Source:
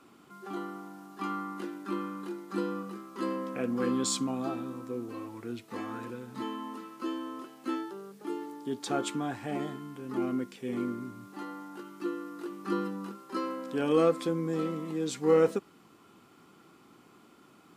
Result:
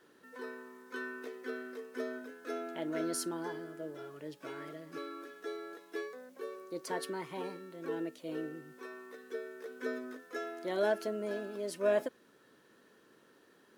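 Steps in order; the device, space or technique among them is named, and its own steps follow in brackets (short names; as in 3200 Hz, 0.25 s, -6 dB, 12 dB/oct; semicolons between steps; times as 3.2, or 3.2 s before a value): nightcore (varispeed +29%); gain -6 dB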